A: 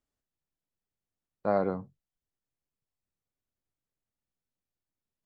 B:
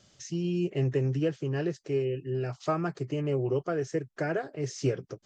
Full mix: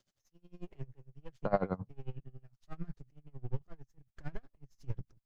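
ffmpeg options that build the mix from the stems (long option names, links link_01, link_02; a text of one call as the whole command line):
ffmpeg -i stem1.wav -i stem2.wav -filter_complex "[0:a]bass=frequency=250:gain=-7,treble=frequency=4000:gain=-2,acontrast=70,volume=-2.5dB[link_01];[1:a]aeval=exprs='if(lt(val(0),0),0.251*val(0),val(0))':channel_layout=same,aeval=exprs='val(0)*pow(10,-18*(0.5-0.5*cos(2*PI*1.4*n/s))/20)':channel_layout=same,volume=-8.5dB[link_02];[link_01][link_02]amix=inputs=2:normalize=0,asubboost=boost=10:cutoff=140,aeval=exprs='val(0)*pow(10,-24*(0.5-0.5*cos(2*PI*11*n/s))/20)':channel_layout=same" out.wav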